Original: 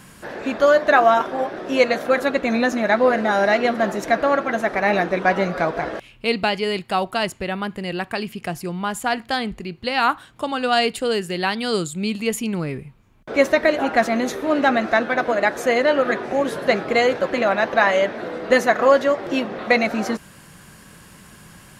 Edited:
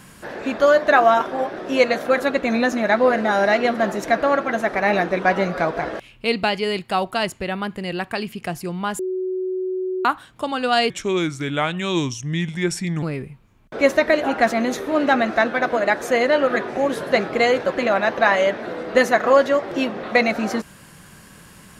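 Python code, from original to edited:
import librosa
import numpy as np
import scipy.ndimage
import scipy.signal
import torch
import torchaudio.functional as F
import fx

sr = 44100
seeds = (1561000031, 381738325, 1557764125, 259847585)

y = fx.edit(x, sr, fx.bleep(start_s=8.99, length_s=1.06, hz=372.0, db=-21.5),
    fx.speed_span(start_s=10.9, length_s=1.68, speed=0.79), tone=tone)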